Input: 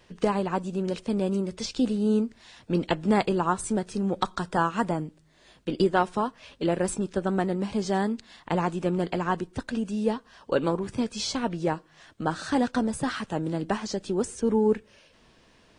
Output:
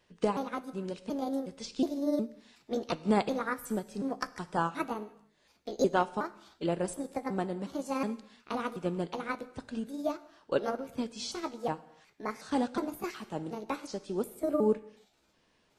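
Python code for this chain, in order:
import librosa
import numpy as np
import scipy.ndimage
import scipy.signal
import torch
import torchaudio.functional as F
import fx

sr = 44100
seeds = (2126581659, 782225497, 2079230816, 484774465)

y = fx.pitch_trill(x, sr, semitones=5.5, every_ms=365)
y = fx.low_shelf(y, sr, hz=120.0, db=-5.5)
y = fx.rev_gated(y, sr, seeds[0], gate_ms=340, shape='falling', drr_db=10.5)
y = fx.dynamic_eq(y, sr, hz=1800.0, q=2.7, threshold_db=-47.0, ratio=4.0, max_db=-5)
y = fx.upward_expand(y, sr, threshold_db=-36.0, expansion=1.5)
y = y * librosa.db_to_amplitude(-2.5)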